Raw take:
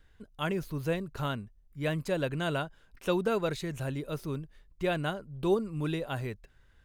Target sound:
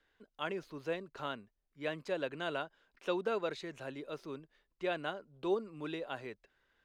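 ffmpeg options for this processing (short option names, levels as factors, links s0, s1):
-filter_complex "[0:a]acrossover=split=250 6300:gain=0.112 1 0.126[s0][s1][s2];[s0][s1][s2]amix=inputs=3:normalize=0,volume=0.596"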